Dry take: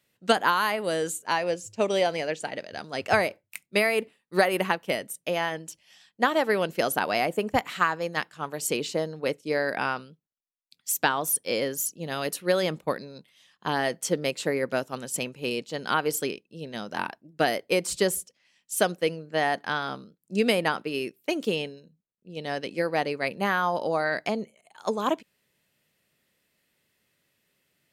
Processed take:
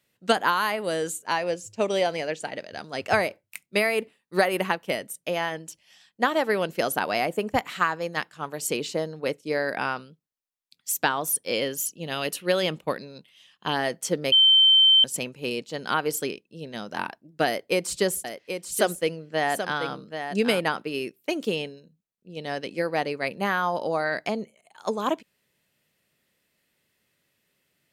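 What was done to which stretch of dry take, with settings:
11.53–13.77 bell 2900 Hz +8 dB 0.47 oct
14.32–15.04 bleep 3100 Hz -13 dBFS
17.46–20.6 echo 0.782 s -8 dB

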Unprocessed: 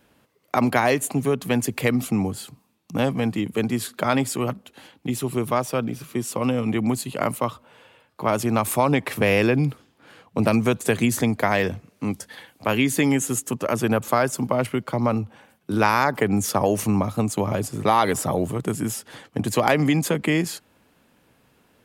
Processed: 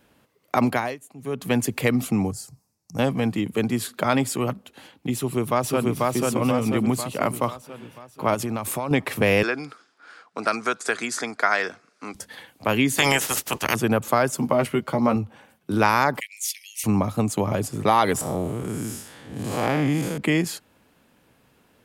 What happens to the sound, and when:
0.64–1.51 dip -20 dB, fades 0.33 s
2.31–2.99 EQ curve 130 Hz 0 dB, 240 Hz -13 dB, 750 Hz -6 dB, 1100 Hz -12 dB, 2000 Hz -11 dB, 3400 Hz -21 dB, 5200 Hz +5 dB, 15000 Hz -4 dB
5.14–6.02 echo throw 0.49 s, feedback 55%, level -1 dB
8.34–8.91 compressor 4:1, threshold -24 dBFS
9.43–12.15 speaker cabinet 500–8900 Hz, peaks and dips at 540 Hz -6 dB, 890 Hz -4 dB, 1400 Hz +10 dB, 2900 Hz -6 dB, 5000 Hz +6 dB
12.97–13.74 spectral limiter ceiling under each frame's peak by 27 dB
14.38–15.16 doubler 13 ms -5 dB
16.2–16.84 steep high-pass 2000 Hz 96 dB/oct
18.21–20.18 time blur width 0.174 s

